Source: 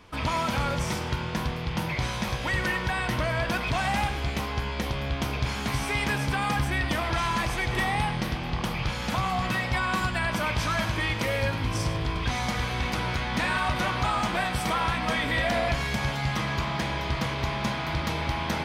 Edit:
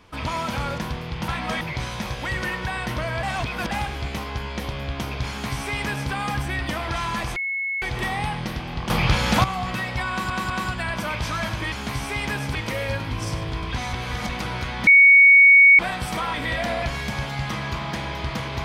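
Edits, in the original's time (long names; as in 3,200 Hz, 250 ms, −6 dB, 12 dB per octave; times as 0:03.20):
0:00.78–0:01.33: remove
0:03.45–0:03.93: reverse
0:05.51–0:06.34: duplicate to 0:11.08
0:07.58: insert tone 2,190 Hz −23.5 dBFS 0.46 s
0:08.66–0:09.20: clip gain +9.5 dB
0:09.86: stutter 0.20 s, 3 plays
0:12.46–0:12.82: reverse
0:13.40–0:14.32: beep over 2,230 Hz −8 dBFS
0:14.87–0:15.20: move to 0:01.83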